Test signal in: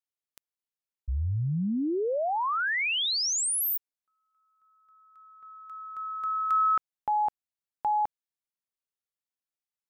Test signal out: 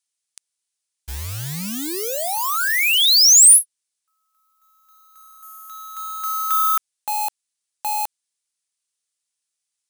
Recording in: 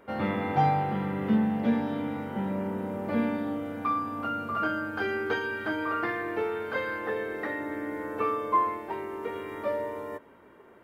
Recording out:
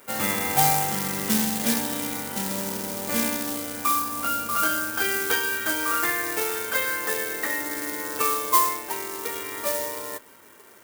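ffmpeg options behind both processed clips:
-af "aresample=22050,aresample=44100,acrusher=bits=4:mode=log:mix=0:aa=0.000001,crystalizer=i=10:c=0,volume=0.75"

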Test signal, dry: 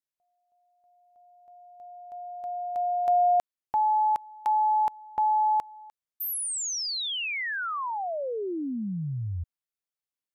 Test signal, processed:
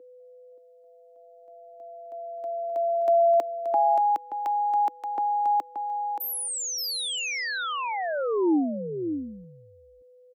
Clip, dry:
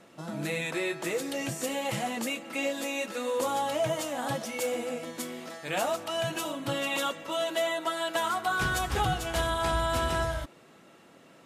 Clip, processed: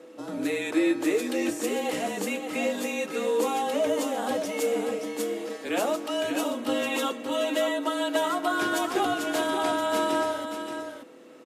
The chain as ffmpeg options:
-filter_complex "[0:a]afreqshift=-32,aeval=exprs='val(0)+0.00282*sin(2*PI*500*n/s)':c=same,highpass=f=310:t=q:w=3.5,asplit=2[s0][s1];[s1]aecho=0:1:577:0.422[s2];[s0][s2]amix=inputs=2:normalize=0"

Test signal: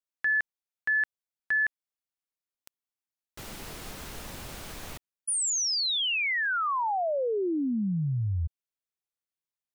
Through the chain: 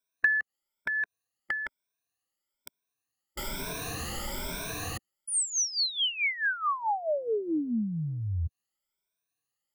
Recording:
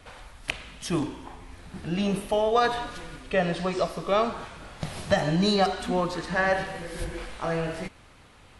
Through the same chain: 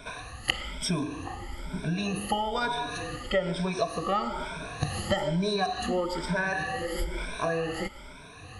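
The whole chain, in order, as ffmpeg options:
-af "afftfilt=real='re*pow(10,20/40*sin(2*PI*(1.6*log(max(b,1)*sr/1024/100)/log(2)-(1.1)*(pts-256)/sr)))':imag='im*pow(10,20/40*sin(2*PI*(1.6*log(max(b,1)*sr/1024/100)/log(2)-(1.1)*(pts-256)/sr)))':win_size=1024:overlap=0.75,acompressor=threshold=0.0126:ratio=2.5:attack=84:release=166:knee=6:detection=peak,volume=1.41"

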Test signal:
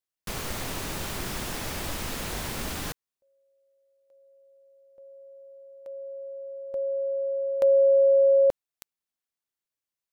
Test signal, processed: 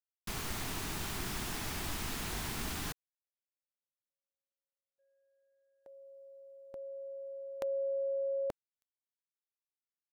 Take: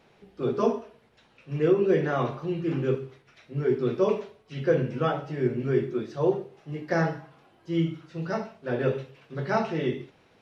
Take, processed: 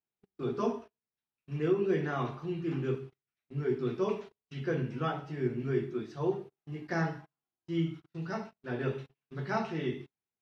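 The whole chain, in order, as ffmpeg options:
-af "agate=range=0.0224:threshold=0.00355:ratio=16:release=37:detection=peak,equalizer=f=540:w=4.1:g=-11,volume=0.562"

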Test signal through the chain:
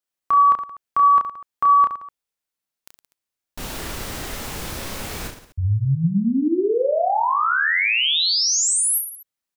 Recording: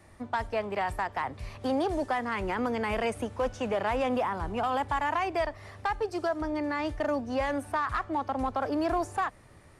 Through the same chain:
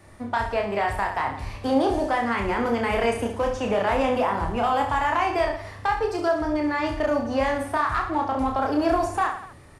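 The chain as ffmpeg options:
-af "aecho=1:1:30|67.5|114.4|173|246.2:0.631|0.398|0.251|0.158|0.1,volume=1.58"

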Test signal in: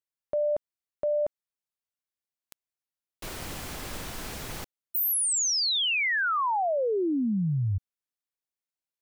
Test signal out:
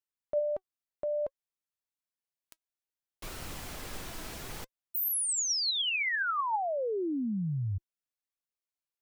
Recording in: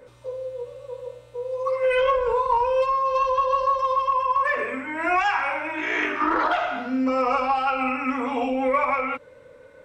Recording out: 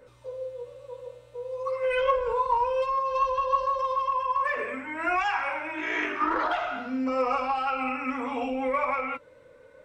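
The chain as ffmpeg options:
-af "flanger=delay=0.7:depth=2.4:regen=78:speed=0.59:shape=sinusoidal"

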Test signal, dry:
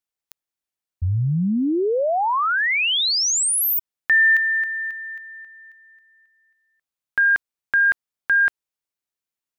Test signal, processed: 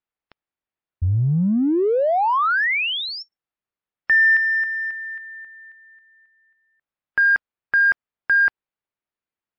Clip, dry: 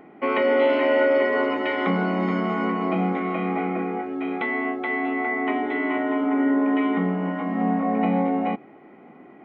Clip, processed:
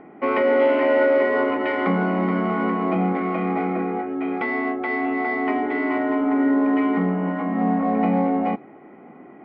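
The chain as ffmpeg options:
-filter_complex "[0:a]lowpass=2300,asplit=2[s0][s1];[s1]asoftclip=type=tanh:threshold=0.0422,volume=0.251[s2];[s0][s2]amix=inputs=2:normalize=0,volume=1.19" -ar 12000 -c:a libmp3lame -b:a 56k

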